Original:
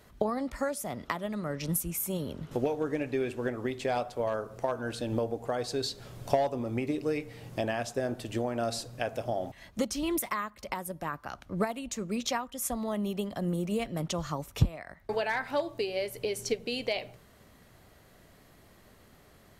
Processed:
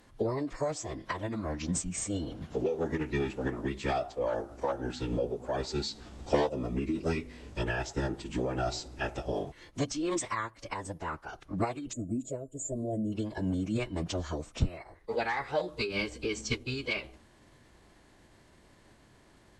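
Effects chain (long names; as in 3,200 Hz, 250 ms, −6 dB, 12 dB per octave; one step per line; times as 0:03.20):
phase-vocoder pitch shift with formants kept −11 semitones
gain on a spectral selection 0:11.93–0:13.13, 690–6,700 Hz −26 dB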